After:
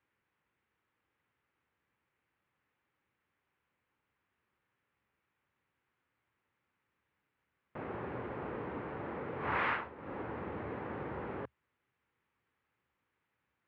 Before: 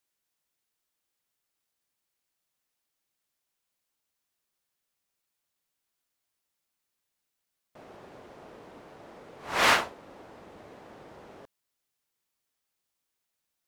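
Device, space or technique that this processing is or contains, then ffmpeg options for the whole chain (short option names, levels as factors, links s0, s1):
bass amplifier: -af "acompressor=threshold=0.00891:ratio=5,highpass=61,equalizer=f=73:t=q:w=4:g=8,equalizer=f=120:t=q:w=4:g=5,equalizer=f=660:t=q:w=4:g=-8,lowpass=f=2300:w=0.5412,lowpass=f=2300:w=1.3066,volume=2.99"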